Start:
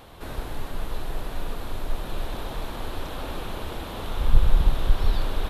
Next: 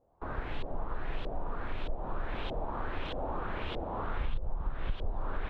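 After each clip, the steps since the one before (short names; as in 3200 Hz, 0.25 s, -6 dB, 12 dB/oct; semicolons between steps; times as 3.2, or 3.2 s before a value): gate with hold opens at -31 dBFS; LFO low-pass saw up 1.6 Hz 540–3400 Hz; compressor 6:1, threshold -24 dBFS, peak gain reduction 16 dB; gain -4 dB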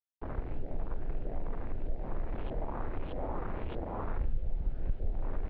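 Wiener smoothing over 41 samples; bit-crush 10-bit; air absorption 420 m; gain +1.5 dB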